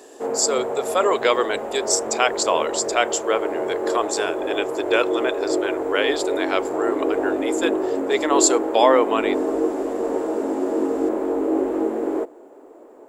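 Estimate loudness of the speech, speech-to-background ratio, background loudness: -22.5 LUFS, 2.0 dB, -24.5 LUFS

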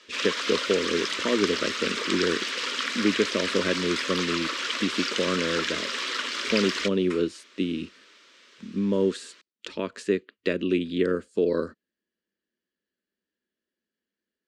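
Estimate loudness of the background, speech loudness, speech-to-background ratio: -28.0 LUFS, -28.0 LUFS, 0.0 dB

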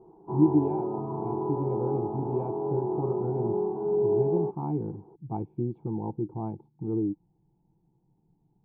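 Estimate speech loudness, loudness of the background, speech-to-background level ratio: -31.5 LUFS, -30.0 LUFS, -1.5 dB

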